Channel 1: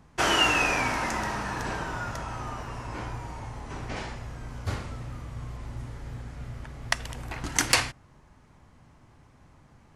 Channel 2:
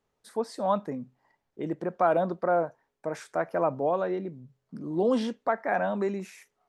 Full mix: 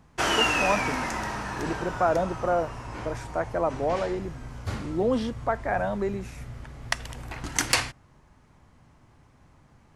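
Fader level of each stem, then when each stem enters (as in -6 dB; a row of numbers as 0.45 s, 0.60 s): -1.0 dB, 0.0 dB; 0.00 s, 0.00 s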